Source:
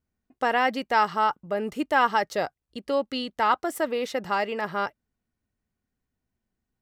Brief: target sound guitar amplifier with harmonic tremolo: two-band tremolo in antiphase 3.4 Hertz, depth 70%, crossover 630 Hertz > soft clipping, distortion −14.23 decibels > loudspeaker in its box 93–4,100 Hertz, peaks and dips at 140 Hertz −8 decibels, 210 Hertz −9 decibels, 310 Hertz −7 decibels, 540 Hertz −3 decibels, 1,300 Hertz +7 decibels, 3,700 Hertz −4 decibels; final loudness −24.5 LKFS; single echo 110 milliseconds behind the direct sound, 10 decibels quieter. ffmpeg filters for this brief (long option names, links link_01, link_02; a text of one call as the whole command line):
ffmpeg -i in.wav -filter_complex "[0:a]aecho=1:1:110:0.316,acrossover=split=630[link_01][link_02];[link_01]aeval=exprs='val(0)*(1-0.7/2+0.7/2*cos(2*PI*3.4*n/s))':channel_layout=same[link_03];[link_02]aeval=exprs='val(0)*(1-0.7/2-0.7/2*cos(2*PI*3.4*n/s))':channel_layout=same[link_04];[link_03][link_04]amix=inputs=2:normalize=0,asoftclip=threshold=-19.5dB,highpass=93,equalizer=frequency=140:width_type=q:width=4:gain=-8,equalizer=frequency=210:width_type=q:width=4:gain=-9,equalizer=frequency=310:width_type=q:width=4:gain=-7,equalizer=frequency=540:width_type=q:width=4:gain=-3,equalizer=frequency=1300:width_type=q:width=4:gain=7,equalizer=frequency=3700:width_type=q:width=4:gain=-4,lowpass=frequency=4100:width=0.5412,lowpass=frequency=4100:width=1.3066,volume=5dB" out.wav